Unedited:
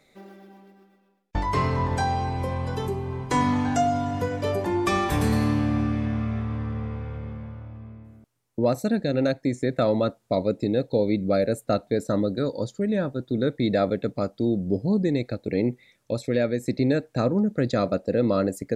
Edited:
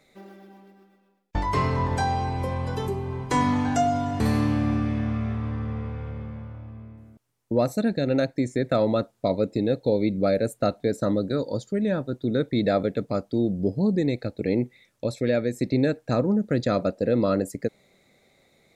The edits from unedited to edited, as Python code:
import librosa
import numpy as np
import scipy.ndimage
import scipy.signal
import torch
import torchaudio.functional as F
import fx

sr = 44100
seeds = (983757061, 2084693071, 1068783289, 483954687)

y = fx.edit(x, sr, fx.cut(start_s=4.2, length_s=1.07), tone=tone)